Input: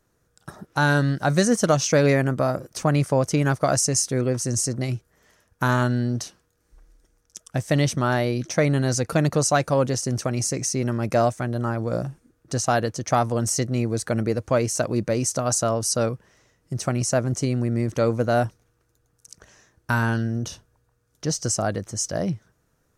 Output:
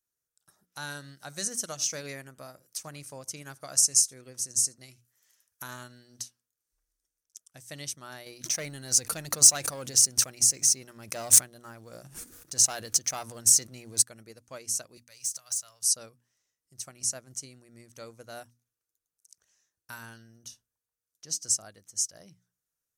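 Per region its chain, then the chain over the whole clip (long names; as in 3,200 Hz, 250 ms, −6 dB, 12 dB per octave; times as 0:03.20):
0:00.72–0:06.24: single-tap delay 80 ms −22 dB + one half of a high-frequency compander encoder only
0:08.26–0:14.02: leveller curve on the samples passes 1 + level that may fall only so fast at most 24 dB per second
0:14.97–0:15.83: guitar amp tone stack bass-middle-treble 10-0-10 + downward compressor 5 to 1, threshold −27 dBFS + leveller curve on the samples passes 1
whole clip: first-order pre-emphasis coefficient 0.9; mains-hum notches 60/120/180/240/300 Hz; expander for the loud parts 1.5 to 1, over −48 dBFS; level +4.5 dB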